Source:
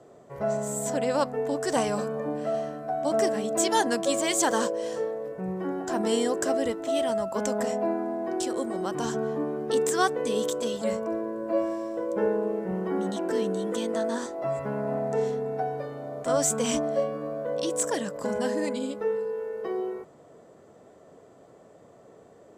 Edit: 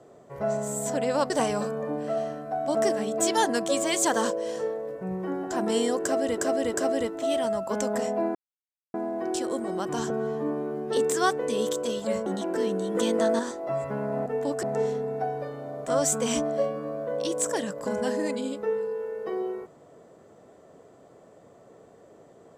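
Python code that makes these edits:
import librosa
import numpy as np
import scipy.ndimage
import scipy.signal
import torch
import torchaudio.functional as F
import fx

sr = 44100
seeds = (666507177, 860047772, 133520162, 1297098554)

y = fx.edit(x, sr, fx.move(start_s=1.3, length_s=0.37, to_s=15.01),
    fx.repeat(start_s=6.39, length_s=0.36, count=3),
    fx.insert_silence(at_s=8.0, length_s=0.59),
    fx.stretch_span(start_s=9.16, length_s=0.58, factor=1.5),
    fx.cut(start_s=11.03, length_s=1.98),
    fx.clip_gain(start_s=13.7, length_s=0.44, db=4.5), tone=tone)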